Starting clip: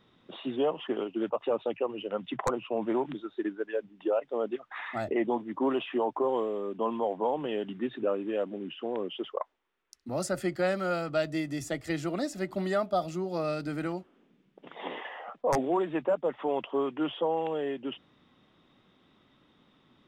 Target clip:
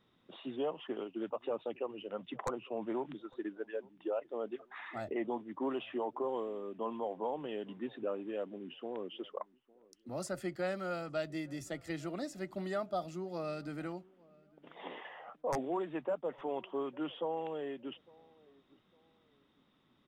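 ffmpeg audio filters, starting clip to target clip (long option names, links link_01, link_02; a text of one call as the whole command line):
ffmpeg -i in.wav -filter_complex "[0:a]asplit=2[link_01][link_02];[link_02]adelay=856,lowpass=frequency=1200:poles=1,volume=-24dB,asplit=2[link_03][link_04];[link_04]adelay=856,lowpass=frequency=1200:poles=1,volume=0.33[link_05];[link_01][link_03][link_05]amix=inputs=3:normalize=0,volume=-8dB" out.wav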